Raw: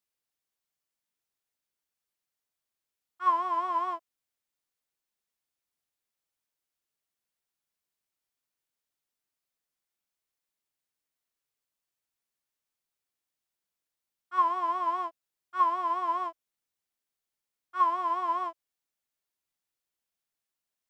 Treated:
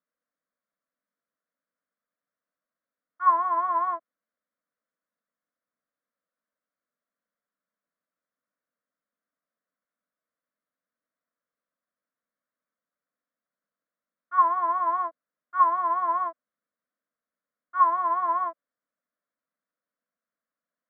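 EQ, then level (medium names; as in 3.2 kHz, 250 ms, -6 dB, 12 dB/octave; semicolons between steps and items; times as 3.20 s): Gaussian low-pass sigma 3.3 samples; high-pass 160 Hz; static phaser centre 560 Hz, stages 8; +8.5 dB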